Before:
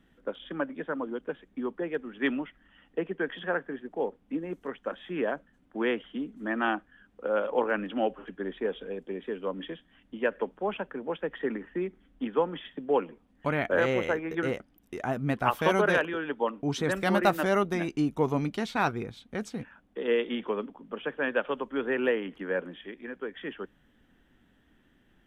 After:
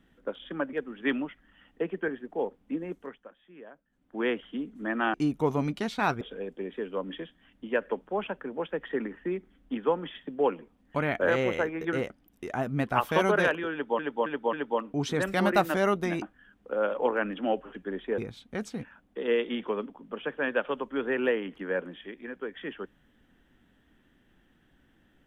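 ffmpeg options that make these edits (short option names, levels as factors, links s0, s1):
-filter_complex "[0:a]asplit=12[s0][s1][s2][s3][s4][s5][s6][s7][s8][s9][s10][s11];[s0]atrim=end=0.732[s12];[s1]atrim=start=1.898:end=3.252[s13];[s2]atrim=start=3.688:end=4.91,asetpts=PTS-STARTPTS,afade=t=out:st=0.782:d=0.44:silence=0.11885[s14];[s3]atrim=start=4.91:end=5.45,asetpts=PTS-STARTPTS,volume=0.119[s15];[s4]atrim=start=5.45:end=6.752,asetpts=PTS-STARTPTS,afade=t=in:d=0.44:silence=0.11885[s16];[s5]atrim=start=17.908:end=18.982[s17];[s6]atrim=start=8.708:end=16.492[s18];[s7]atrim=start=16.218:end=16.492[s19];[s8]atrim=start=16.218:end=16.492[s20];[s9]atrim=start=16.218:end=17.912[s21];[s10]atrim=start=6.748:end=8.712[s22];[s11]atrim=start=18.978[s23];[s12][s13]acrossfade=d=0.004:c1=hsin:c2=hsin[s24];[s14][s15][s16]concat=n=3:v=0:a=1[s25];[s24][s25]acrossfade=d=0.004:c1=hsin:c2=hsin[s26];[s26][s17]acrossfade=d=0.004:c1=hsin:c2=hsin[s27];[s27][s18]acrossfade=d=0.004:c1=hsin:c2=hsin[s28];[s28][s19]acrossfade=d=0.004:c1=hsin:c2=hsin[s29];[s29][s20]acrossfade=d=0.004:c1=hsin:c2=hsin[s30];[s30][s21]acrossfade=d=0.004:c1=hsin:c2=hsin[s31];[s31][s22]acrossfade=d=0.004:c1=hsin:c2=hsin[s32];[s32][s23]acrossfade=d=0.004:c1=hsin:c2=hsin"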